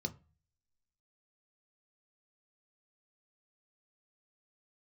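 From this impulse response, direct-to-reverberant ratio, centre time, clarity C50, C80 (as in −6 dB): 5.5 dB, 5 ms, 20.0 dB, 25.5 dB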